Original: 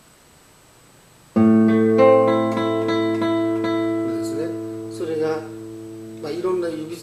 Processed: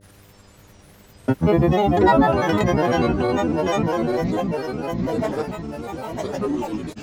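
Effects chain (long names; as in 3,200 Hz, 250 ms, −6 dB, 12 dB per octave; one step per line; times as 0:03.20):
low shelf with overshoot 120 Hz +9 dB, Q 1.5
feedback delay with all-pass diffusion 1,018 ms, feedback 51%, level −6.5 dB
granular cloud, pitch spread up and down by 12 semitones
hum with harmonics 100 Hz, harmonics 6, −54 dBFS −4 dB per octave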